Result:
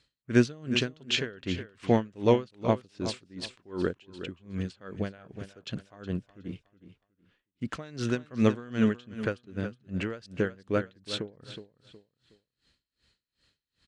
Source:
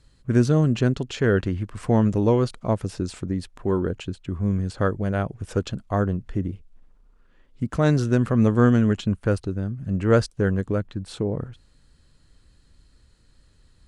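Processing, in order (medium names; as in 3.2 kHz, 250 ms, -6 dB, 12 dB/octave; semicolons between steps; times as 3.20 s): frequency weighting D; gate -52 dBFS, range -7 dB; treble shelf 5.9 kHz -9.5 dB; feedback delay 367 ms, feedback 27%, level -12 dB; logarithmic tremolo 2.6 Hz, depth 28 dB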